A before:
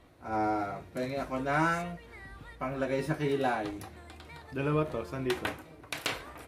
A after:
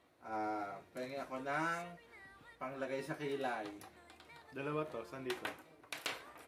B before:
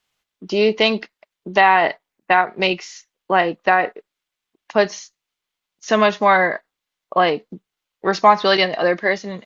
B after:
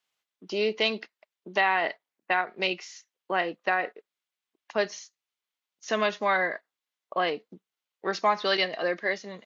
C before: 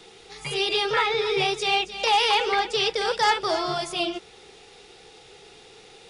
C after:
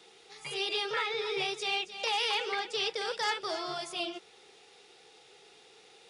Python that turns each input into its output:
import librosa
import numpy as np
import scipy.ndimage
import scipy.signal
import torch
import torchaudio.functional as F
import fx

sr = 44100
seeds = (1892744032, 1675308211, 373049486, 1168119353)

y = fx.highpass(x, sr, hz=340.0, slope=6)
y = fx.dynamic_eq(y, sr, hz=890.0, q=1.6, threshold_db=-31.0, ratio=4.0, max_db=-5)
y = y * librosa.db_to_amplitude(-7.5)